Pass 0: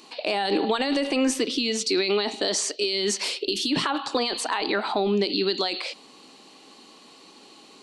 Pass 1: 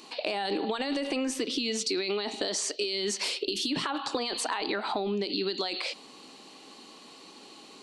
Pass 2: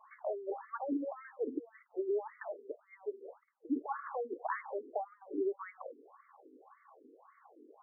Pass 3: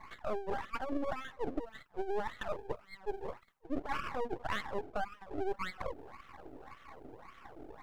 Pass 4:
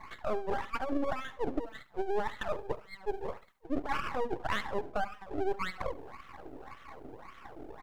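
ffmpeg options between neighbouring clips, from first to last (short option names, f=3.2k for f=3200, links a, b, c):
-af "acompressor=threshold=-27dB:ratio=6"
-af "highshelf=f=3.4k:g=-11.5,afftfilt=real='re*between(b*sr/1024,330*pow(1600/330,0.5+0.5*sin(2*PI*1.8*pts/sr))/1.41,330*pow(1600/330,0.5+0.5*sin(2*PI*1.8*pts/sr))*1.41)':imag='im*between(b*sr/1024,330*pow(1600/330,0.5+0.5*sin(2*PI*1.8*pts/sr))/1.41,330*pow(1600/330,0.5+0.5*sin(2*PI*1.8*pts/sr))*1.41)':win_size=1024:overlap=0.75,volume=-1dB"
-af "areverse,acompressor=threshold=-42dB:ratio=6,areverse,aeval=exprs='max(val(0),0)':c=same,volume=12.5dB"
-af "aecho=1:1:71|142:0.126|0.034,volume=3.5dB"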